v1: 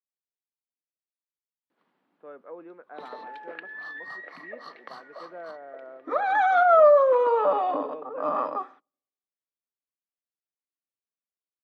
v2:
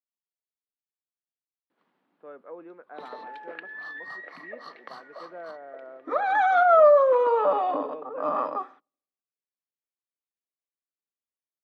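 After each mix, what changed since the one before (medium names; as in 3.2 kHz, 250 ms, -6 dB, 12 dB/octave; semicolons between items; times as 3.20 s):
no change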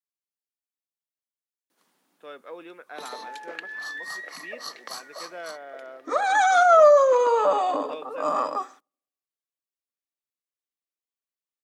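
speech: remove low-pass 1.3 kHz 12 dB/octave; master: remove distance through air 420 m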